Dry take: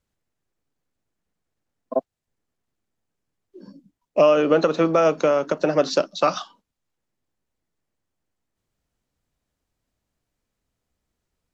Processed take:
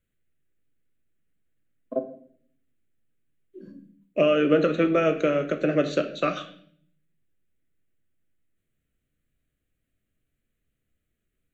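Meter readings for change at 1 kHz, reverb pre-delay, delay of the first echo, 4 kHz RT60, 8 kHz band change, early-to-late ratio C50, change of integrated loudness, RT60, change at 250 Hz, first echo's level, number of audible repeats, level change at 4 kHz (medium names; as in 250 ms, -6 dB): -7.0 dB, 3 ms, no echo, 0.55 s, no reading, 12.0 dB, -3.5 dB, 0.60 s, 0.0 dB, no echo, no echo, -4.5 dB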